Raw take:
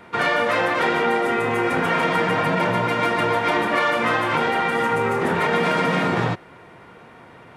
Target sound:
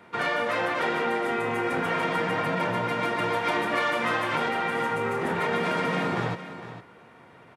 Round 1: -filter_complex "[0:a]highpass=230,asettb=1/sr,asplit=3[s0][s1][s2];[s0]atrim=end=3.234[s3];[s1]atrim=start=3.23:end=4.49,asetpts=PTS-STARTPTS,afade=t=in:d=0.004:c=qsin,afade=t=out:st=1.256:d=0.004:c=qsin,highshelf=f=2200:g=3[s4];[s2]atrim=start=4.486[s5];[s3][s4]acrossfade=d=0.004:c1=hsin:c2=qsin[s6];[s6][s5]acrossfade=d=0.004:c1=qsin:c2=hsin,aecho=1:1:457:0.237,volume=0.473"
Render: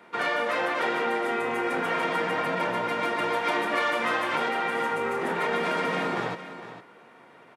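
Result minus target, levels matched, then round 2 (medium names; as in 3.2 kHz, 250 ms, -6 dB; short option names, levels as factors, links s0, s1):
125 Hz band -7.5 dB
-filter_complex "[0:a]highpass=77,asettb=1/sr,asplit=3[s0][s1][s2];[s0]atrim=end=3.234[s3];[s1]atrim=start=3.23:end=4.49,asetpts=PTS-STARTPTS,afade=t=in:d=0.004:c=qsin,afade=t=out:st=1.256:d=0.004:c=qsin,highshelf=f=2200:g=3[s4];[s2]atrim=start=4.486[s5];[s3][s4]acrossfade=d=0.004:c1=hsin:c2=qsin[s6];[s6][s5]acrossfade=d=0.004:c1=qsin:c2=hsin,aecho=1:1:457:0.237,volume=0.473"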